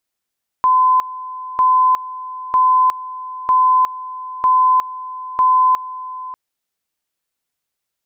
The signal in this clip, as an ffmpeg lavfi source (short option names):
-f lavfi -i "aevalsrc='pow(10,(-9.5-16.5*gte(mod(t,0.95),0.36))/20)*sin(2*PI*1020*t)':d=5.7:s=44100"